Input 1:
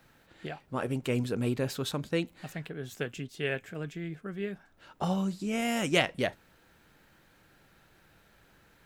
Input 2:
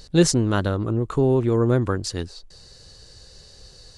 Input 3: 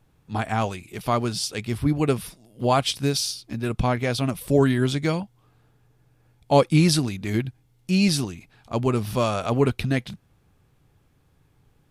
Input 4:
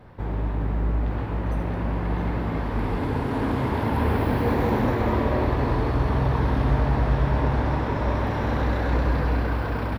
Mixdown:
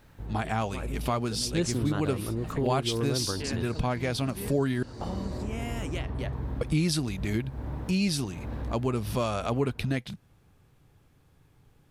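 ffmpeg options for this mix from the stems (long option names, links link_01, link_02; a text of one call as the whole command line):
ffmpeg -i stem1.wav -i stem2.wav -i stem3.wav -i stem4.wav -filter_complex "[0:a]acompressor=threshold=-33dB:ratio=6,volume=0dB[link_01];[1:a]adelay=1400,volume=-5dB[link_02];[2:a]volume=0.5dB,asplit=3[link_03][link_04][link_05];[link_03]atrim=end=4.83,asetpts=PTS-STARTPTS,afade=type=out:start_time=4.826:duration=0.004:curve=hsin[link_06];[link_04]atrim=start=4.83:end=6.61,asetpts=PTS-STARTPTS,volume=0[link_07];[link_05]atrim=start=6.61,asetpts=PTS-STARTPTS,afade=type=in:duration=0.004:curve=hsin[link_08];[link_06][link_07][link_08]concat=n=3:v=0:a=1,asplit=2[link_09][link_10];[3:a]lowshelf=frequency=460:gain=11,volume=-19.5dB[link_11];[link_10]apad=whole_len=440136[link_12];[link_11][link_12]sidechaincompress=threshold=-26dB:ratio=8:attack=38:release=430[link_13];[link_01][link_02][link_09][link_13]amix=inputs=4:normalize=0,acompressor=threshold=-29dB:ratio=2" out.wav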